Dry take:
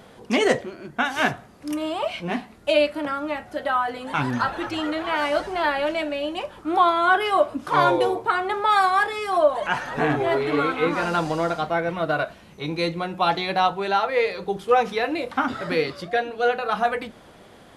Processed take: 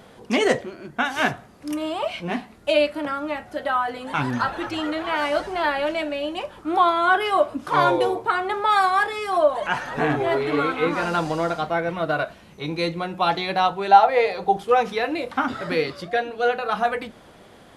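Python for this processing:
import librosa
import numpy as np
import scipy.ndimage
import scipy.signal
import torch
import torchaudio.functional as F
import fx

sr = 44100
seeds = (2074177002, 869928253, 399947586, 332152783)

y = fx.peak_eq(x, sr, hz=750.0, db=14.5, octaves=0.43, at=(13.91, 14.63))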